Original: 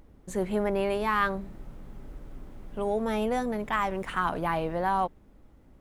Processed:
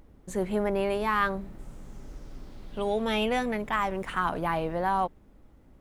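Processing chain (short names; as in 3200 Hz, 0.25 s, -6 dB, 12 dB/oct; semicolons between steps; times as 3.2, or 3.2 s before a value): 1.58–3.57 bell 8400 Hz -> 2300 Hz +12.5 dB 1 oct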